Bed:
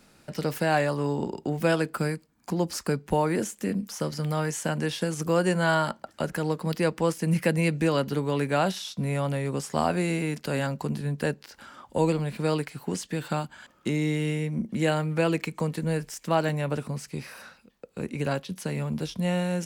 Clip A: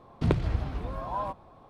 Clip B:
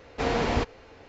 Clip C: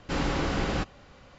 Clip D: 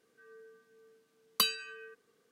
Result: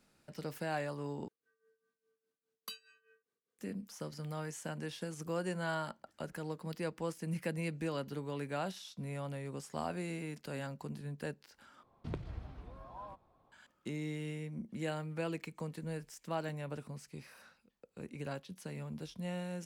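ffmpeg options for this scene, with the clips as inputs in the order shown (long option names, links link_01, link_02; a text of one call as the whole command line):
ffmpeg -i bed.wav -i cue0.wav -i cue1.wav -i cue2.wav -i cue3.wav -filter_complex "[0:a]volume=-13.5dB[link_01];[4:a]tremolo=f=4.9:d=0.82[link_02];[link_01]asplit=3[link_03][link_04][link_05];[link_03]atrim=end=1.284[link_06];[link_02]atrim=end=2.31,asetpts=PTS-STARTPTS,volume=-17dB[link_07];[link_04]atrim=start=3.586:end=11.834[link_08];[1:a]atrim=end=1.69,asetpts=PTS-STARTPTS,volume=-16dB[link_09];[link_05]atrim=start=13.516[link_10];[link_06][link_07]acrossfade=duration=0.004:curve1=hsin:curve2=hsin[link_11];[link_11][link_08]acrossfade=duration=0.004:curve1=hsin:curve2=hsin[link_12];[link_12][link_09]acrossfade=duration=0.004:curve1=hsin:curve2=hsin[link_13];[link_13][link_10]acrossfade=duration=0.004:curve1=hsin:curve2=hsin" out.wav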